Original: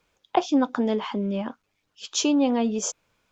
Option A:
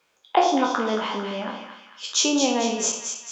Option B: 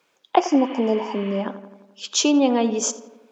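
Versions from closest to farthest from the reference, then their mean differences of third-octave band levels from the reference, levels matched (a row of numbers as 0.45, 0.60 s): B, A; 4.0, 8.0 dB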